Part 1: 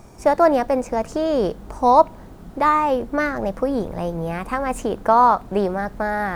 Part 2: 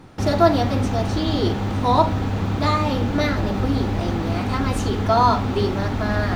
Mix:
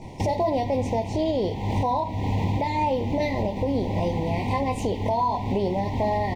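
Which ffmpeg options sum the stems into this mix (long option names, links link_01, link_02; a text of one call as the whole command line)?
ffmpeg -i stem1.wav -i stem2.wav -filter_complex "[0:a]lowpass=5200,alimiter=limit=-12dB:level=0:latency=1:release=79,volume=0.5dB,asplit=2[link_01][link_02];[1:a]equalizer=frequency=125:width_type=o:width=1:gain=5,equalizer=frequency=1000:width_type=o:width=1:gain=6,equalizer=frequency=2000:width_type=o:width=1:gain=4,volume=-1,adelay=16,volume=1dB[link_03];[link_02]apad=whole_len=280918[link_04];[link_03][link_04]sidechaincompress=threshold=-25dB:ratio=8:attack=16:release=730[link_05];[link_01][link_05]amix=inputs=2:normalize=0,asuperstop=centerf=1400:order=20:qfactor=1.7,alimiter=limit=-15.5dB:level=0:latency=1:release=248" out.wav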